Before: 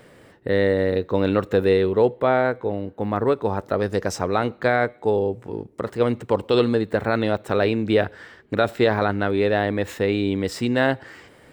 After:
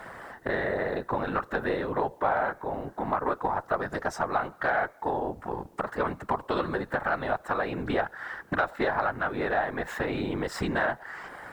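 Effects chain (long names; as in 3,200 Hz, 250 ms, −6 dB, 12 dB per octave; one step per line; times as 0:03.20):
flat-topped bell 1,100 Hz +13.5 dB
downward compressor 3 to 1, threshold −29 dBFS, peak gain reduction 18 dB
random phases in short frames
bit-depth reduction 12 bits, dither triangular
harmonic generator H 4 −27 dB, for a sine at −12.5 dBFS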